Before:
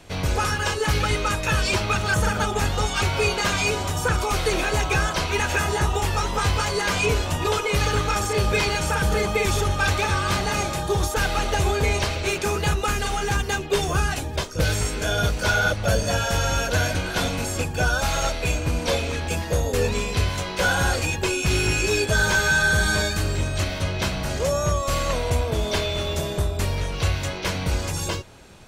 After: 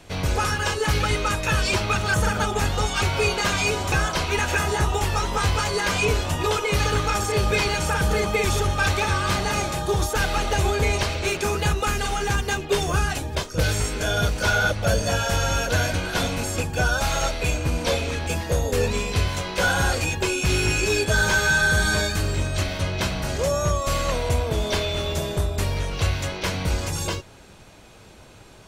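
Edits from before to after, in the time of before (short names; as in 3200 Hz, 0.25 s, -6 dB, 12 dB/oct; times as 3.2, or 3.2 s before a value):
3.92–4.93 cut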